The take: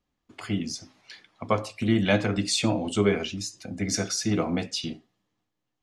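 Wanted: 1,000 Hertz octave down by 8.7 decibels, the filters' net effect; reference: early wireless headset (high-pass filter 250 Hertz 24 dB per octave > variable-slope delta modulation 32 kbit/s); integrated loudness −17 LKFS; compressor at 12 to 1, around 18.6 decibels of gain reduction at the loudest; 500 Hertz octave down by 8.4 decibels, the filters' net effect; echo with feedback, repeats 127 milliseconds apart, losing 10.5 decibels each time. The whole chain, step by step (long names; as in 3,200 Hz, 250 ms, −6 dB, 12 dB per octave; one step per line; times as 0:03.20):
parametric band 500 Hz −9 dB
parametric band 1,000 Hz −8.5 dB
downward compressor 12 to 1, threshold −39 dBFS
high-pass filter 250 Hz 24 dB per octave
repeating echo 127 ms, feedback 30%, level −10.5 dB
variable-slope delta modulation 32 kbit/s
level +28 dB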